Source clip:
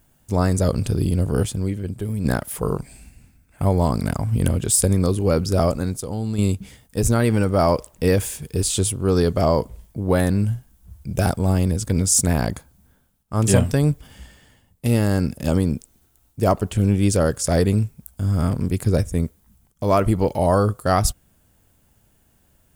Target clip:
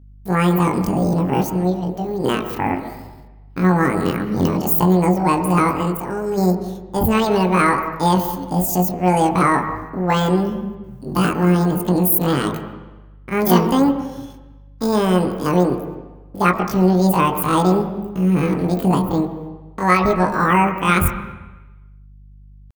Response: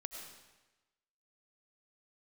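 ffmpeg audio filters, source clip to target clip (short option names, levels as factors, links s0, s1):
-filter_complex "[0:a]agate=range=0.0562:threshold=0.00447:ratio=16:detection=peak,bandreject=f=60:t=h:w=6,bandreject=f=120:t=h:w=6,bandreject=f=180:t=h:w=6,bandreject=f=240:t=h:w=6,bandreject=f=300:t=h:w=6,bandreject=f=360:t=h:w=6,bandreject=f=420:t=h:w=6,bandreject=f=480:t=h:w=6,bandreject=f=540:t=h:w=6,bandreject=f=600:t=h:w=6,asetrate=83250,aresample=44100,atempo=0.529732,aeval=exprs='val(0)+0.00501*(sin(2*PI*50*n/s)+sin(2*PI*2*50*n/s)/2+sin(2*PI*3*50*n/s)/3+sin(2*PI*4*50*n/s)/4+sin(2*PI*5*50*n/s)/5)':c=same,asplit=2[s0][s1];[1:a]atrim=start_sample=2205,lowpass=2200,adelay=22[s2];[s1][s2]afir=irnorm=-1:irlink=0,volume=0.891[s3];[s0][s3]amix=inputs=2:normalize=0,volume=1.19"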